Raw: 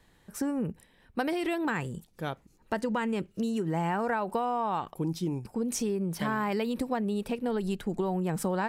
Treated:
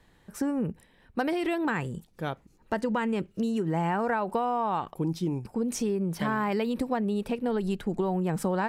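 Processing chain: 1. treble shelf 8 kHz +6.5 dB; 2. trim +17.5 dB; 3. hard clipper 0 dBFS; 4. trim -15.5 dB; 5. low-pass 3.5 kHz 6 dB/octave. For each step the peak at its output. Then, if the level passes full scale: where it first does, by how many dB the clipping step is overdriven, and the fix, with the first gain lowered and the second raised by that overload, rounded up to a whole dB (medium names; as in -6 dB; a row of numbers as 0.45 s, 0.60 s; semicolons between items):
-14.5 dBFS, +3.0 dBFS, 0.0 dBFS, -15.5 dBFS, -15.5 dBFS; step 2, 3.0 dB; step 2 +14.5 dB, step 4 -12.5 dB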